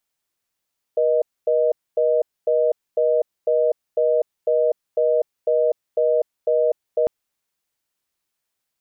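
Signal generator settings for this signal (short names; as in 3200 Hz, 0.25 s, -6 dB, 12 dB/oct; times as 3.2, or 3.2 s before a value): call progress tone reorder tone, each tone -18 dBFS 6.10 s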